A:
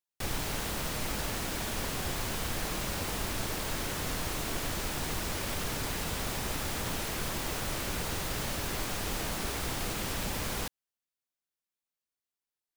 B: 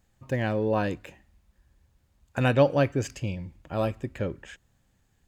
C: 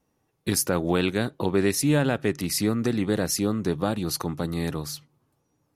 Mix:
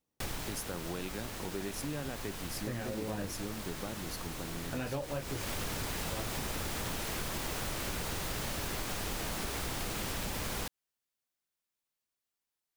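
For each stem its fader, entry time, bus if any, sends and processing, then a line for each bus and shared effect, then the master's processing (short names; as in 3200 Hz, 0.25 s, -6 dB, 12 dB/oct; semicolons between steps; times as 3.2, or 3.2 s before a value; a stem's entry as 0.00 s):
+2.5 dB, 0.00 s, no send, auto duck -10 dB, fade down 0.65 s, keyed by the third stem
-5.5 dB, 2.35 s, no send, detuned doubles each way 20 cents
-15.0 dB, 0.00 s, no send, dry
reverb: off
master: compressor, threshold -33 dBFS, peak gain reduction 8.5 dB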